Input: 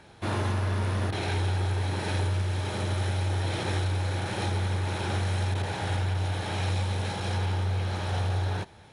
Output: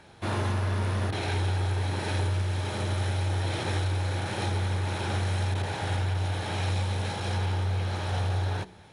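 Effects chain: de-hum 61.59 Hz, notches 8

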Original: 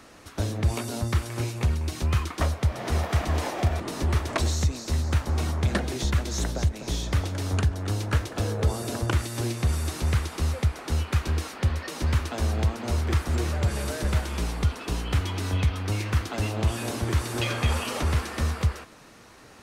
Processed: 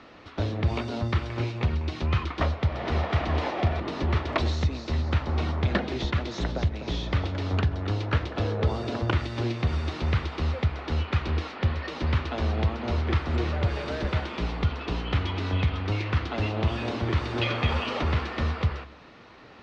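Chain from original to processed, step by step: LPF 4100 Hz 24 dB/oct; low shelf 69 Hz -5.5 dB; notch 1600 Hz, Q 22; de-hum 69.13 Hz, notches 3; gain +1.5 dB

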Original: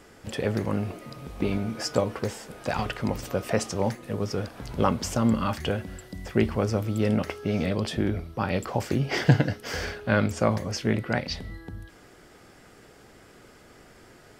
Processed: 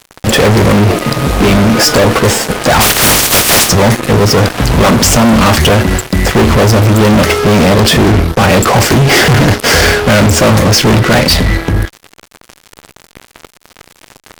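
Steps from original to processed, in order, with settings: 2.8–3.68 spectral contrast lowered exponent 0.27; fuzz box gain 39 dB, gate -45 dBFS; gain +8 dB

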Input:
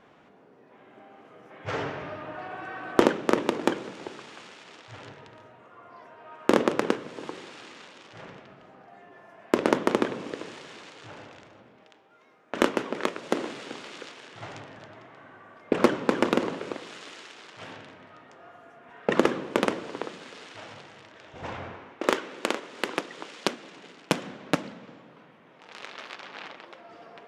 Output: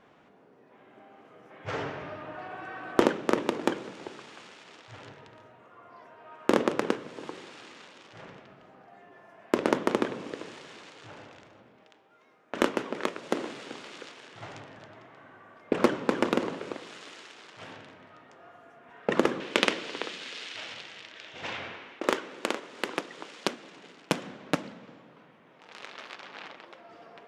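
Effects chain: 19.4–22 weighting filter D; gain -2.5 dB

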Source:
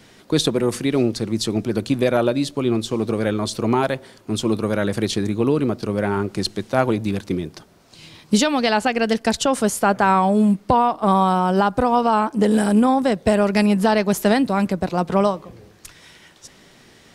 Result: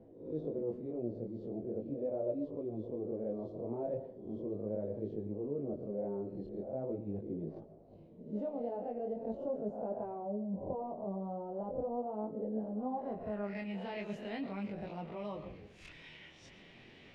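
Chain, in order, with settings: spectral swells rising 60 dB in 0.44 s; bell 1400 Hz -9.5 dB 1.2 oct; reverse; compressor 5:1, threshold -32 dBFS, peak gain reduction 18.5 dB; reverse; low-pass sweep 570 Hz -> 2500 Hz, 12.65–13.73; chorus 0.4 Hz, delay 18 ms, depth 7.6 ms; reverb RT60 0.45 s, pre-delay 75 ms, DRR 14.5 dB; gain -5.5 dB

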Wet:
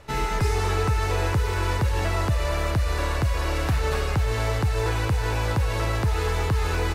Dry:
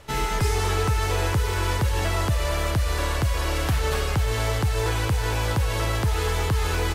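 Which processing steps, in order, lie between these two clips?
high shelf 5400 Hz -7 dB; notch 3200 Hz, Q 11

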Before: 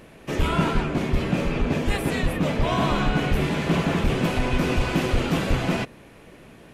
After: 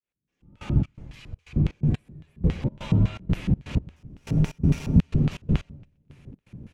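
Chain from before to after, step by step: opening faded in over 0.75 s; 3.96–5 sample-rate reducer 8400 Hz; EQ curve 130 Hz 0 dB, 3300 Hz -24 dB, 6400 Hz -10 dB; AGC gain up to 13 dB; 0.82–1.56 passive tone stack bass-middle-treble 10-0-10; LFO band-pass square 3.6 Hz 260–3000 Hz; notches 60/120/180 Hz; frequency shift -100 Hz; feedback echo 0.124 s, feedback 59%, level -22 dB; step gate "x....xx.xxx.xx." 123 bpm -24 dB; gain +5.5 dB

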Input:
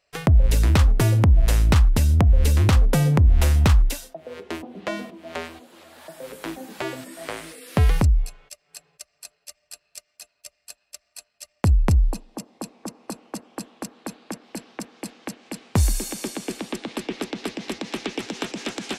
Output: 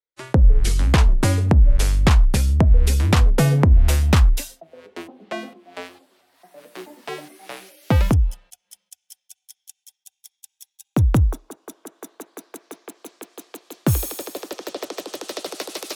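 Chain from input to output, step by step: speed glide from 78% -> 160%; three-band expander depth 70%

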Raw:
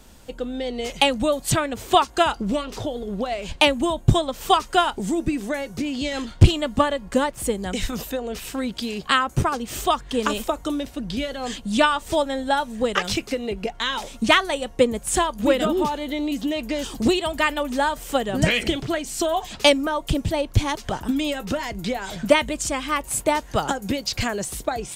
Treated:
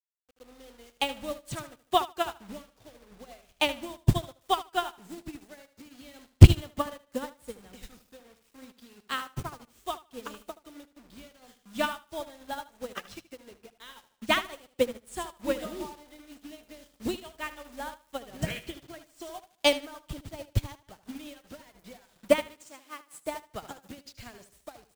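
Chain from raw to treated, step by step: bit-crush 5-bit; 22.47–23.24 HPF 240 Hz 12 dB/oct; feedback echo 76 ms, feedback 45%, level -7 dB; upward expander 2.5:1, over -30 dBFS; gain +3 dB

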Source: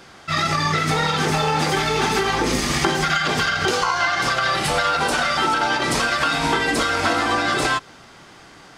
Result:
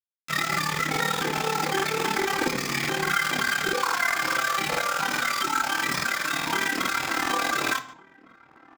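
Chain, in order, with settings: spectral gate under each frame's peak -15 dB strong; 4.95–7.27 bell 480 Hz -10.5 dB 0.51 oct; bit-crush 4-bit; flange 0.36 Hz, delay 7.1 ms, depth 2.2 ms, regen -71%; AM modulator 36 Hz, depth 85%; outdoor echo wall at 250 m, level -22 dB; reverb RT60 0.45 s, pre-delay 3 ms, DRR 7 dB; crackling interface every 0.21 s, samples 2048, repeat, from 0.49

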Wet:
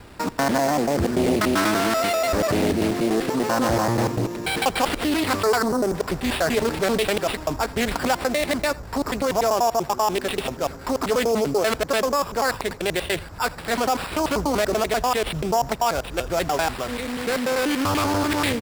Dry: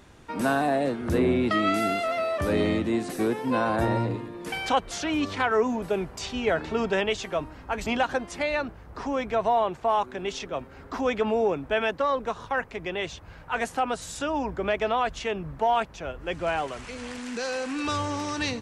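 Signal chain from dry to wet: slices in reverse order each 97 ms, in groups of 2; in parallel at -2 dB: negative-ratio compressor -30 dBFS, ratio -1; on the sum: sample-and-hold 7×; spectral gain 5.64–5.95, 1700–5700 Hz -11 dB; on a send: echo 83 ms -22 dB; on the sum: Doppler distortion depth 0.5 ms; gain +1.5 dB

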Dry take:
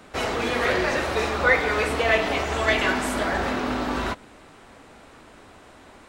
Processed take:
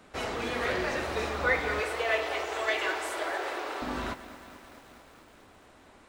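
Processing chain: 1.8–3.82 steep high-pass 320 Hz 72 dB/oct; lo-fi delay 0.218 s, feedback 80%, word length 7-bit, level -15 dB; gain -7.5 dB

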